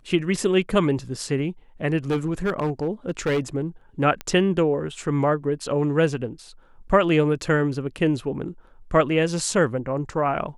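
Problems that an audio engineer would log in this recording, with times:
2.1–3.4 clipped -18.5 dBFS
4.21 pop -15 dBFS

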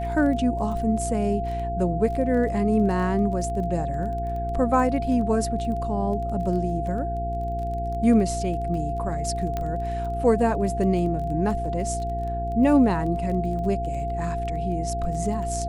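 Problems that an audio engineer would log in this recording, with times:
crackle 18/s -33 dBFS
hum 60 Hz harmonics 7 -30 dBFS
tone 690 Hz -28 dBFS
9.57 pop -15 dBFS

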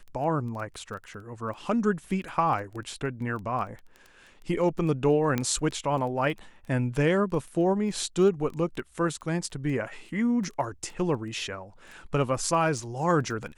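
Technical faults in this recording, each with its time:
crackle 11/s -35 dBFS
5.38 pop -13 dBFS

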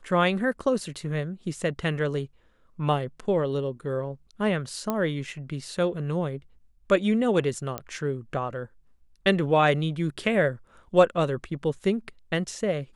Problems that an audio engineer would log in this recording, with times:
4.9 pop -13 dBFS
7.78 pop -15 dBFS

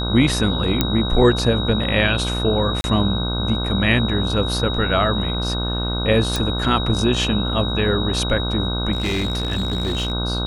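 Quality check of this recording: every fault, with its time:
buzz 60 Hz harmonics 26 -24 dBFS
tone 3800 Hz -26 dBFS
0.81 pop -2 dBFS
2.81–2.84 gap 31 ms
6.36 pop
8.92–10.12 clipped -17.5 dBFS

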